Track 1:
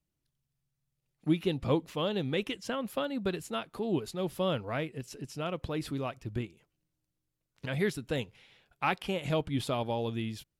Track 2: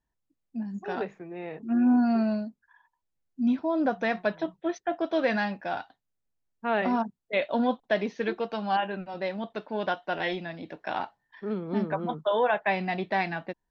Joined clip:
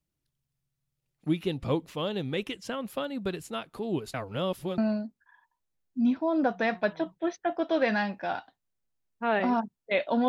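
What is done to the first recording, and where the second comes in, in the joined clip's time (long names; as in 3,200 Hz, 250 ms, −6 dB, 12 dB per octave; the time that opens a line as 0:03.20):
track 1
0:04.14–0:04.78: reverse
0:04.78: continue with track 2 from 0:02.20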